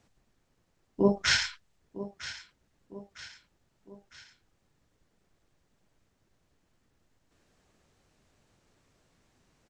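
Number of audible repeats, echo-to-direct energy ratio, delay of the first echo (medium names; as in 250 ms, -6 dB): 3, -14.0 dB, 956 ms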